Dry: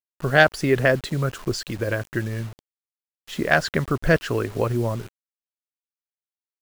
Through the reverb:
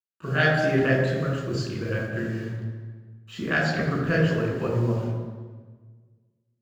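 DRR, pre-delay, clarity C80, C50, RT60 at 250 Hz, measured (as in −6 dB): −4.0 dB, 3 ms, 4.0 dB, 1.5 dB, 1.7 s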